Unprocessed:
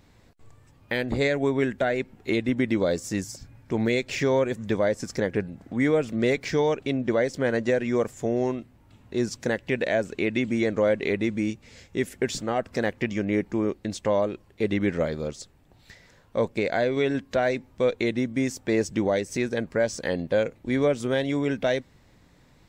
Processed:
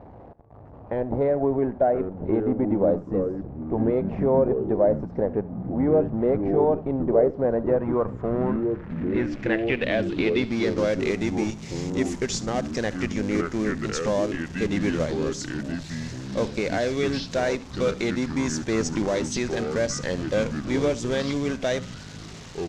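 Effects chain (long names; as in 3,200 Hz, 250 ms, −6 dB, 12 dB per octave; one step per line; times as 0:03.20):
converter with a step at zero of −37 dBFS
high-pass filter 41 Hz 12 dB per octave
in parallel at −8 dB: comparator with hysteresis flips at −23.5 dBFS
on the sum: low-pass filter sweep 750 Hz → 6,400 Hz, 0:07.49–0:11.05
on a send: single-tap delay 73 ms −18.5 dB
on the sum: delay with pitch and tempo change per echo 722 ms, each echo −5 semitones, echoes 3, each echo −6 dB
level −3.5 dB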